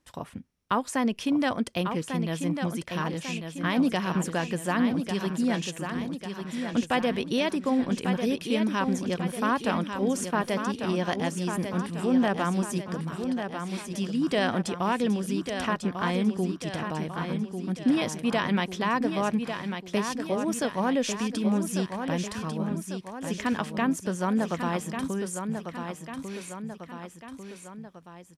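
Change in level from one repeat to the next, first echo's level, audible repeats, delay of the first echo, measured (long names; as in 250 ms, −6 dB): −5.5 dB, −7.0 dB, 3, 1,146 ms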